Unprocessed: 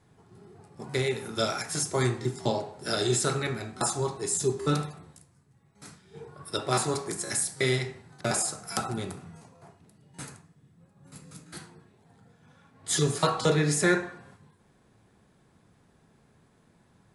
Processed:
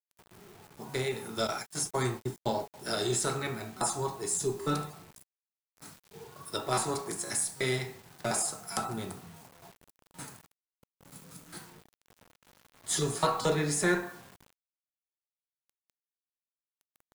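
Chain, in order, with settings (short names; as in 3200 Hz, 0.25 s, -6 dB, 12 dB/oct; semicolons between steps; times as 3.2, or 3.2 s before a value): bell 880 Hz +4.5 dB 0.92 oct; in parallel at -11 dB: one-sided clip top -30.5 dBFS; 1.47–2.74 on the sum: gate -29 dBFS, range -23 dB; on a send at -13 dB: reverb, pre-delay 3 ms; on the sum: bit-crush 8-bit; high shelf 10000 Hz +6 dB; gain -6.5 dB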